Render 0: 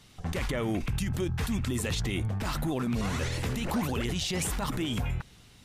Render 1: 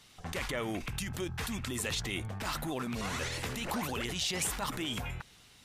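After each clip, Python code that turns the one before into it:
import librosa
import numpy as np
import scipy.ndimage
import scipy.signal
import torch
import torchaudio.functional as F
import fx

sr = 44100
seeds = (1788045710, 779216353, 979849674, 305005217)

y = fx.low_shelf(x, sr, hz=400.0, db=-10.0)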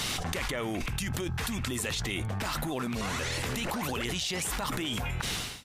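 y = fx.fade_out_tail(x, sr, length_s=1.47)
y = fx.env_flatten(y, sr, amount_pct=100)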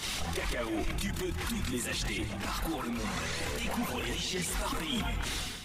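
y = fx.chorus_voices(x, sr, voices=6, hz=0.42, base_ms=27, depth_ms=3.2, mix_pct=65)
y = fx.echo_feedback(y, sr, ms=152, feedback_pct=52, wet_db=-11)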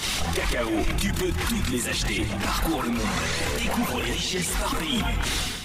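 y = fx.rider(x, sr, range_db=10, speed_s=0.5)
y = y * librosa.db_to_amplitude(8.0)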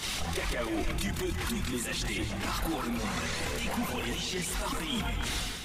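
y = x + 10.0 ** (-11.5 / 20.0) * np.pad(x, (int(287 * sr / 1000.0), 0))[:len(x)]
y = y * librosa.db_to_amplitude(-7.0)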